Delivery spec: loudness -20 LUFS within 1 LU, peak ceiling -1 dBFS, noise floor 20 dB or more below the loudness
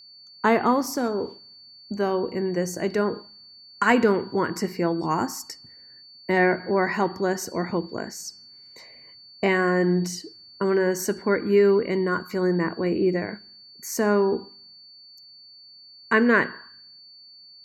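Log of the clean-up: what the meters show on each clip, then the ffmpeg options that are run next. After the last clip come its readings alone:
steady tone 4.5 kHz; tone level -46 dBFS; loudness -24.0 LUFS; peak level -6.0 dBFS; loudness target -20.0 LUFS
-> -af "bandreject=f=4500:w=30"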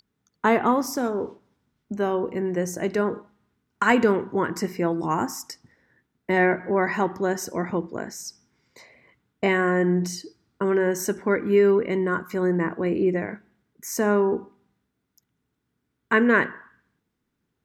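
steady tone not found; loudness -24.0 LUFS; peak level -6.0 dBFS; loudness target -20.0 LUFS
-> -af "volume=1.58"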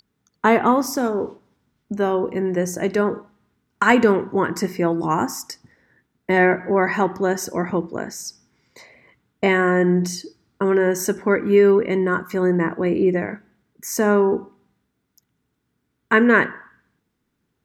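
loudness -20.0 LUFS; peak level -2.0 dBFS; noise floor -74 dBFS

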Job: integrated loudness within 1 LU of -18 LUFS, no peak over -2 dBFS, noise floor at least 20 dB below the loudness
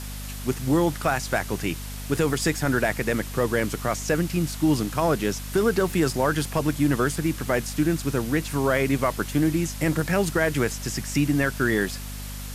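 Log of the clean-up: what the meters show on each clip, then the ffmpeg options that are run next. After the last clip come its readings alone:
hum 50 Hz; highest harmonic 250 Hz; hum level -33 dBFS; noise floor -35 dBFS; noise floor target -45 dBFS; loudness -24.5 LUFS; peak level -9.5 dBFS; loudness target -18.0 LUFS
-> -af "bandreject=f=50:t=h:w=6,bandreject=f=100:t=h:w=6,bandreject=f=150:t=h:w=6,bandreject=f=200:t=h:w=6,bandreject=f=250:t=h:w=6"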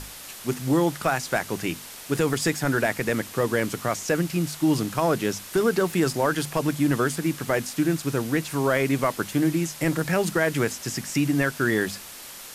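hum not found; noise floor -41 dBFS; noise floor target -45 dBFS
-> -af "afftdn=nr=6:nf=-41"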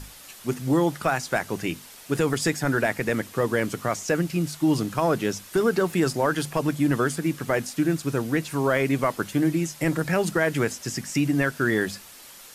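noise floor -46 dBFS; loudness -25.0 LUFS; peak level -10.0 dBFS; loudness target -18.0 LUFS
-> -af "volume=2.24"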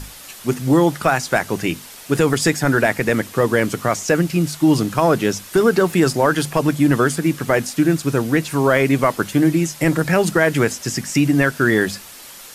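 loudness -18.0 LUFS; peak level -3.0 dBFS; noise floor -39 dBFS

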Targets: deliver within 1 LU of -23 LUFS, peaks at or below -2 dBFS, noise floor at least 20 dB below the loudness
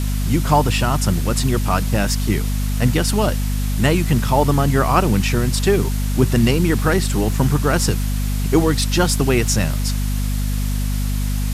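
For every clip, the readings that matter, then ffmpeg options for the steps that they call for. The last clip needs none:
hum 50 Hz; highest harmonic 250 Hz; hum level -18 dBFS; noise floor -20 dBFS; noise floor target -39 dBFS; loudness -18.5 LUFS; peak level -1.5 dBFS; loudness target -23.0 LUFS
-> -af "bandreject=f=50:t=h:w=6,bandreject=f=100:t=h:w=6,bandreject=f=150:t=h:w=6,bandreject=f=200:t=h:w=6,bandreject=f=250:t=h:w=6"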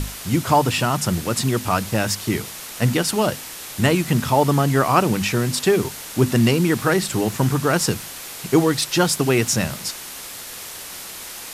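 hum not found; noise floor -35 dBFS; noise floor target -40 dBFS
-> -af "afftdn=nr=6:nf=-35"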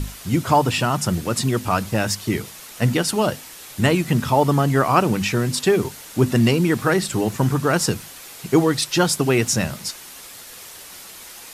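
noise floor -40 dBFS; loudness -20.0 LUFS; peak level -2.5 dBFS; loudness target -23.0 LUFS
-> -af "volume=0.708"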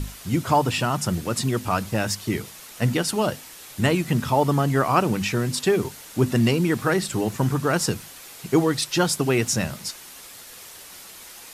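loudness -23.0 LUFS; peak level -5.5 dBFS; noise floor -43 dBFS

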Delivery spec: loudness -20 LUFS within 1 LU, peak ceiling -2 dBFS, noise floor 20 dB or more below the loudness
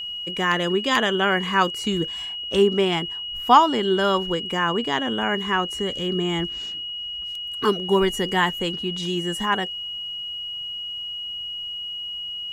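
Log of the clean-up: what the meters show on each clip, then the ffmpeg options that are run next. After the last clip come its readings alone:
steady tone 2.9 kHz; tone level -29 dBFS; loudness -23.0 LUFS; peak level -2.0 dBFS; loudness target -20.0 LUFS
-> -af "bandreject=f=2900:w=30"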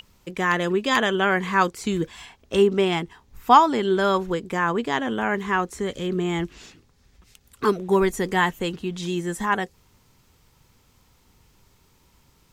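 steady tone not found; loudness -23.0 LUFS; peak level -2.5 dBFS; loudness target -20.0 LUFS
-> -af "volume=1.41,alimiter=limit=0.794:level=0:latency=1"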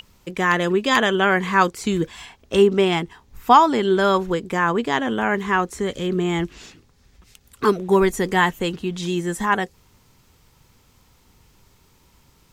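loudness -20.0 LUFS; peak level -2.0 dBFS; noise floor -58 dBFS

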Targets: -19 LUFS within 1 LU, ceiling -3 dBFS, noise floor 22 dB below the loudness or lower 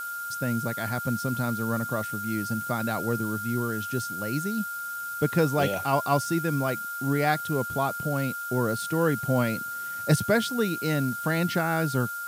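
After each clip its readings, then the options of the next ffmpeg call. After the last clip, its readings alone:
steady tone 1.4 kHz; tone level -32 dBFS; noise floor -34 dBFS; noise floor target -49 dBFS; loudness -27.0 LUFS; peak level -9.5 dBFS; loudness target -19.0 LUFS
-> -af "bandreject=f=1400:w=30"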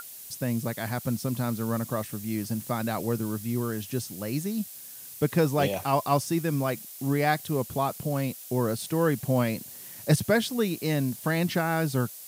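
steady tone not found; noise floor -44 dBFS; noise floor target -50 dBFS
-> -af "afftdn=nr=6:nf=-44"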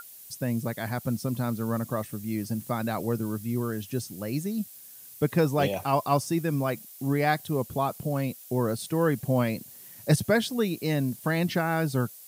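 noise floor -48 dBFS; noise floor target -51 dBFS
-> -af "afftdn=nr=6:nf=-48"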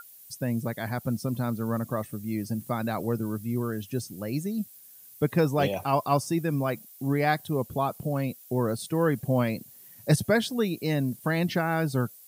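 noise floor -51 dBFS; loudness -28.5 LUFS; peak level -10.0 dBFS; loudness target -19.0 LUFS
-> -af "volume=2.99,alimiter=limit=0.708:level=0:latency=1"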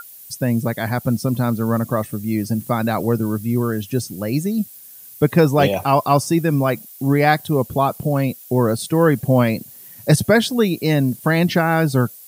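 loudness -19.0 LUFS; peak level -3.0 dBFS; noise floor -41 dBFS

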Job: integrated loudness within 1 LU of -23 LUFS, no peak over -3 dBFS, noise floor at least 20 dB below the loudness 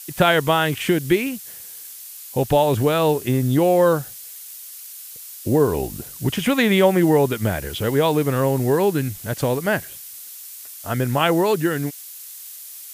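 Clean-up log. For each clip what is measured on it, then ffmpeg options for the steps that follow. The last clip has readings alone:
noise floor -38 dBFS; noise floor target -40 dBFS; loudness -20.0 LUFS; peak level -2.5 dBFS; loudness target -23.0 LUFS
-> -af "afftdn=nr=6:nf=-38"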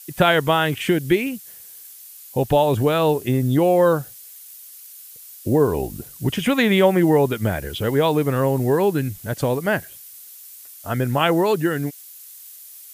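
noise floor -42 dBFS; loudness -20.0 LUFS; peak level -2.5 dBFS; loudness target -23.0 LUFS
-> -af "volume=0.708"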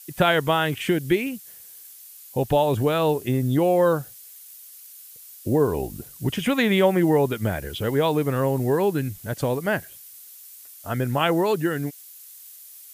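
loudness -23.0 LUFS; peak level -5.5 dBFS; noise floor -45 dBFS

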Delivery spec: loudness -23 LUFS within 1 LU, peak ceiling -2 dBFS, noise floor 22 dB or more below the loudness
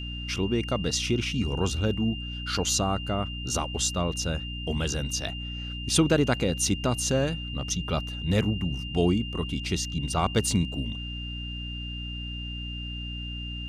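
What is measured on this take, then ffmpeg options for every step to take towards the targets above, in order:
hum 60 Hz; highest harmonic 300 Hz; hum level -33 dBFS; steady tone 2.8 kHz; tone level -37 dBFS; loudness -28.0 LUFS; peak level -9.0 dBFS; loudness target -23.0 LUFS
-> -af "bandreject=f=60:t=h:w=6,bandreject=f=120:t=h:w=6,bandreject=f=180:t=h:w=6,bandreject=f=240:t=h:w=6,bandreject=f=300:t=h:w=6"
-af "bandreject=f=2800:w=30"
-af "volume=1.78"

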